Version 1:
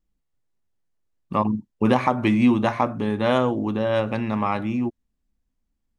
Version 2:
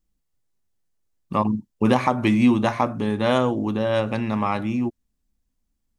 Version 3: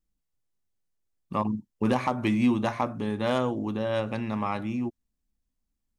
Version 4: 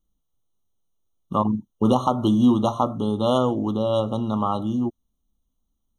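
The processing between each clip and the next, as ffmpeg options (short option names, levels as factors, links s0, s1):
-af "bass=f=250:g=1,treble=f=4000:g=6"
-af "asoftclip=type=hard:threshold=0.376,volume=0.501"
-af "afftfilt=real='re*eq(mod(floor(b*sr/1024/1400),2),0)':imag='im*eq(mod(floor(b*sr/1024/1400),2),0)':win_size=1024:overlap=0.75,volume=2"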